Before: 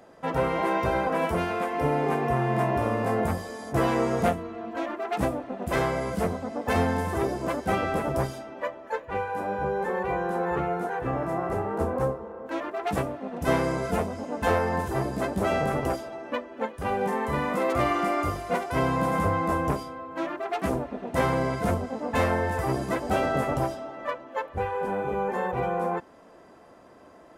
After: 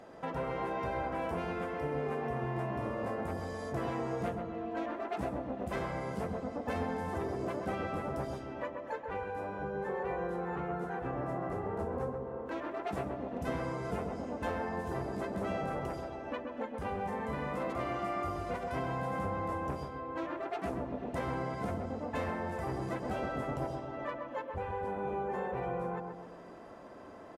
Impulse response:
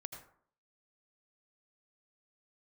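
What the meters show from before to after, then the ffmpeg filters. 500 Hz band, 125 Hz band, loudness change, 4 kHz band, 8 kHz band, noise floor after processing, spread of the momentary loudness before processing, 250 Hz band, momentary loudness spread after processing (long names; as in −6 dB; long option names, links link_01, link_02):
−9.0 dB, −9.0 dB, −9.5 dB, −11.5 dB, −14.5 dB, −48 dBFS, 8 LU, −8.5 dB, 4 LU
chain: -filter_complex "[0:a]highshelf=frequency=9500:gain=-10.5,acompressor=threshold=-40dB:ratio=2.5,asplit=2[link_01][link_02];[link_02]adelay=131,lowpass=frequency=1200:poles=1,volume=-3dB,asplit=2[link_03][link_04];[link_04]adelay=131,lowpass=frequency=1200:poles=1,volume=0.53,asplit=2[link_05][link_06];[link_06]adelay=131,lowpass=frequency=1200:poles=1,volume=0.53,asplit=2[link_07][link_08];[link_08]adelay=131,lowpass=frequency=1200:poles=1,volume=0.53,asplit=2[link_09][link_10];[link_10]adelay=131,lowpass=frequency=1200:poles=1,volume=0.53,asplit=2[link_11][link_12];[link_12]adelay=131,lowpass=frequency=1200:poles=1,volume=0.53,asplit=2[link_13][link_14];[link_14]adelay=131,lowpass=frequency=1200:poles=1,volume=0.53[link_15];[link_01][link_03][link_05][link_07][link_09][link_11][link_13][link_15]amix=inputs=8:normalize=0"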